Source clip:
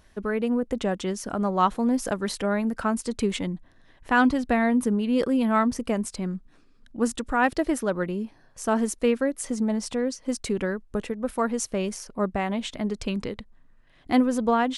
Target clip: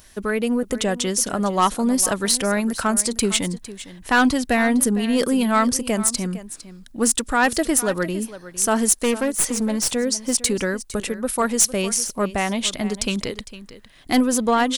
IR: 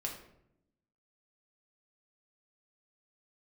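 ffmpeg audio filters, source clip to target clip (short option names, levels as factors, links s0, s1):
-filter_complex "[0:a]crystalizer=i=4.5:c=0,aeval=exprs='0.891*(cos(1*acos(clip(val(0)/0.891,-1,1)))-cos(1*PI/2))+0.316*(cos(5*acos(clip(val(0)/0.891,-1,1)))-cos(5*PI/2))+0.0398*(cos(6*acos(clip(val(0)/0.891,-1,1)))-cos(6*PI/2))':c=same,asettb=1/sr,asplit=3[s0][s1][s2];[s0]atrim=end=9.004[s3];[s1]atrim=start=9:end=9.88,asetpts=PTS-STARTPTS,afade=t=in:d=0.004:c=qsin,afade=t=out:st=0.876:d=0.004:c=qsin,aeval=exprs='clip(val(0),-1,0.158)':c=same[s4];[s2]atrim=start=9.876[s5];[s3][s4]acrossfade=d=0.004:c1=hsin:c2=qsin[s6];[s6][s5]acrossfade=d=0.004:c1=qsin:c2=hsin,asplit=2[s7][s8];[s8]aecho=0:1:456:0.168[s9];[s7][s9]amix=inputs=2:normalize=0,volume=0.531"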